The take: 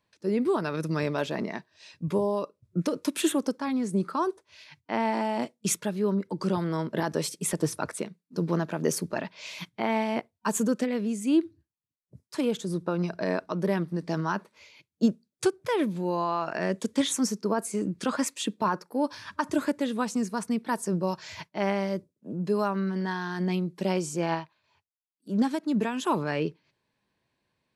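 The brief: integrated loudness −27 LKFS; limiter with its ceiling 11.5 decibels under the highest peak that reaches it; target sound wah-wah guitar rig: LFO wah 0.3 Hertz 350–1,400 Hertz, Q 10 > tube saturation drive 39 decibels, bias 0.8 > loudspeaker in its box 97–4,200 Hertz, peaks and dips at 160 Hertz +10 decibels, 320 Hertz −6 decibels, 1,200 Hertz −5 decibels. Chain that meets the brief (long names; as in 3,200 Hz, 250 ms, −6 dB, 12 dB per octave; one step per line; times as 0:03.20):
brickwall limiter −23 dBFS
LFO wah 0.3 Hz 350–1,400 Hz, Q 10
tube saturation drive 39 dB, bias 0.8
loudspeaker in its box 97–4,200 Hz, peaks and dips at 160 Hz +10 dB, 320 Hz −6 dB, 1,200 Hz −5 dB
level +26.5 dB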